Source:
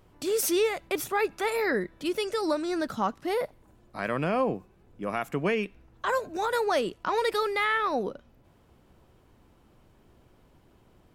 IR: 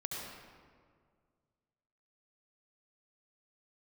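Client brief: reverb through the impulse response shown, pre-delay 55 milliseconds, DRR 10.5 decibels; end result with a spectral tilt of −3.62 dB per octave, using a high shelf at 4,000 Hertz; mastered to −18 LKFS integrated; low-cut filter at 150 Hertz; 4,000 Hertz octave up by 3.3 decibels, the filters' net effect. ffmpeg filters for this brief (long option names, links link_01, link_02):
-filter_complex "[0:a]highpass=150,highshelf=frequency=4000:gain=-6,equalizer=frequency=4000:width_type=o:gain=7.5,asplit=2[link_01][link_02];[1:a]atrim=start_sample=2205,adelay=55[link_03];[link_02][link_03]afir=irnorm=-1:irlink=0,volume=-12dB[link_04];[link_01][link_04]amix=inputs=2:normalize=0,volume=10dB"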